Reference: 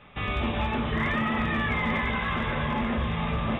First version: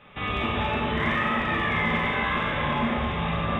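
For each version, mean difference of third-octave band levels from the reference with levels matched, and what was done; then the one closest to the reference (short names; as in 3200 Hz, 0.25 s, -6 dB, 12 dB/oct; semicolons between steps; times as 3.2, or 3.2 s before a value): 2.5 dB: low shelf 94 Hz -8 dB; Schroeder reverb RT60 1 s, combs from 30 ms, DRR -1 dB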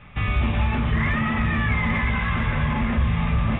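3.5 dB: EQ curve 110 Hz 0 dB, 420 Hz -13 dB, 2300 Hz -6 dB, 4400 Hz -15 dB; in parallel at 0 dB: limiter -28 dBFS, peak gain reduction 7.5 dB; on the sum: gain +5.5 dB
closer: first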